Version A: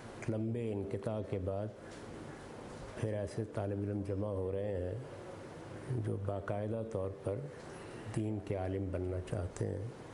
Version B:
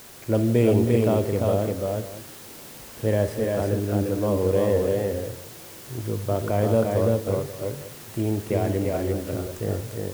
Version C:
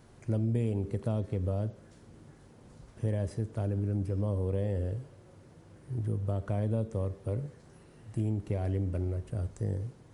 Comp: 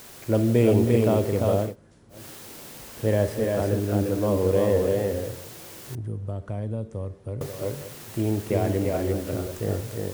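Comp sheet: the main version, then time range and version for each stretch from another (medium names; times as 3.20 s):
B
1.68–2.17 s: from C, crossfade 0.16 s
5.95–7.41 s: from C
not used: A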